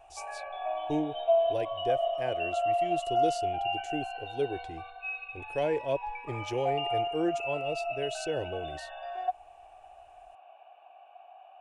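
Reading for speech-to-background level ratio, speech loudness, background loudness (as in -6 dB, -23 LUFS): -3.0 dB, -35.5 LUFS, -32.5 LUFS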